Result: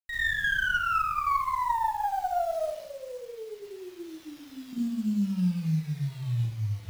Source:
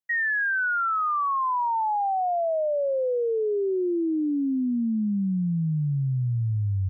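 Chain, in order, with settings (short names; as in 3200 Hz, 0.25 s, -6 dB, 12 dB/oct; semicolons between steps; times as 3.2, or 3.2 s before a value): random-step tremolo 2.5 Hz; bit-crush 8-bit; compressor 3:1, threshold -38 dBFS, peak gain reduction 10.5 dB; 2.64–4.73 band shelf 590 Hz -14 dB 3 oct; reverb RT60 0.75 s, pre-delay 34 ms, DRR -8 dB; running maximum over 5 samples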